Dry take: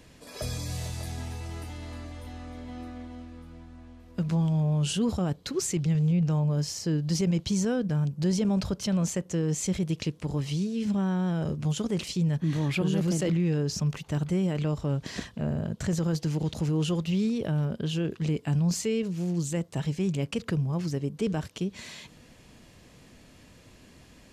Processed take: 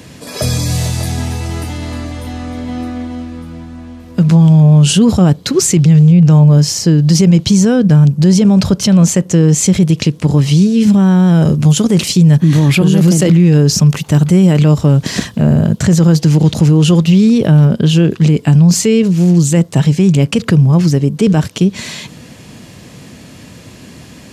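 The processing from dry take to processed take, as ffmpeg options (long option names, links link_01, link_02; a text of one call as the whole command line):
ffmpeg -i in.wav -filter_complex "[0:a]asettb=1/sr,asplit=3[link_01][link_02][link_03];[link_01]atrim=end=10.814[link_04];[link_02]atrim=start=10.81:end=15.79,asetpts=PTS-STARTPTS,afade=type=in:duration=0.004:curve=qsin,afade=type=out:start_time=4.976:duration=0.004:curve=qsin,highshelf=frequency=9800:gain=8.5[link_05];[link_03]atrim=start=15.786[link_06];[link_04][link_05]acrossfade=duration=0.004:curve1=hsin:curve2=qsin[link_07];[link_07][link_06]acrossfade=duration=0.004:curve1=qsin:curve2=hsin,highpass=110,bass=frequency=250:gain=6,treble=frequency=4000:gain=2,alimiter=level_in=17.5dB:limit=-1dB:release=50:level=0:latency=1,volume=-1dB" out.wav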